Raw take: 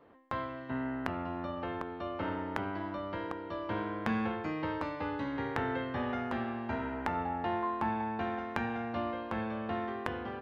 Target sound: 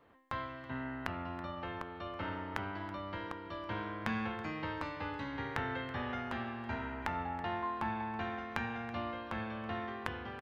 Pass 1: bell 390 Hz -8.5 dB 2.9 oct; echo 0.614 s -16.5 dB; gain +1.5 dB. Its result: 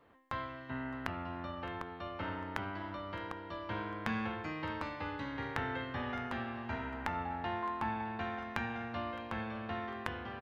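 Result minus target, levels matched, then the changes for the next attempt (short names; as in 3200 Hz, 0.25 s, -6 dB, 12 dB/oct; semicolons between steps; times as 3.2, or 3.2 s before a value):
echo 0.287 s late
change: echo 0.327 s -16.5 dB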